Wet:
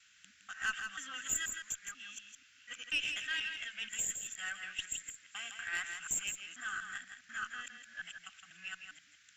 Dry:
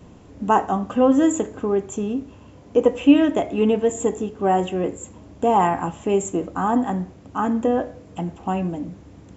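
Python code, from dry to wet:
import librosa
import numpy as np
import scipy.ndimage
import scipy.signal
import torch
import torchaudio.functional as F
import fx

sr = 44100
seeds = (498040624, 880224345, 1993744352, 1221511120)

p1 = fx.local_reverse(x, sr, ms=243.0)
p2 = scipy.signal.sosfilt(scipy.signal.ellip(4, 1.0, 40, 1500.0, 'highpass', fs=sr, output='sos'), p1)
p3 = fx.tube_stage(p2, sr, drive_db=24.0, bias=0.35)
y = p3 + fx.echo_single(p3, sr, ms=164, db=-7.0, dry=0)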